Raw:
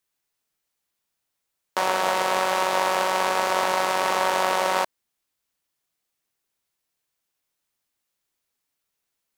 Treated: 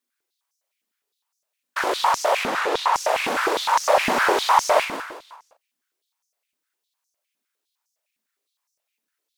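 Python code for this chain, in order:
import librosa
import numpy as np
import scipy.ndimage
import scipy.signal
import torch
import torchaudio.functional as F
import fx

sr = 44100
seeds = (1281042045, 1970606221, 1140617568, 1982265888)

y = fx.high_shelf(x, sr, hz=7700.0, db=-10.0, at=(2.43, 2.94))
y = fx.leveller(y, sr, passes=1, at=(3.83, 4.8))
y = fx.whisperise(y, sr, seeds[0])
y = fx.doubler(y, sr, ms=37.0, db=-6.5)
y = fx.echo_feedback(y, sr, ms=171, feedback_pct=37, wet_db=-8.5)
y = fx.filter_held_highpass(y, sr, hz=9.8, low_hz=240.0, high_hz=5900.0)
y = y * librosa.db_to_amplitude(-3.5)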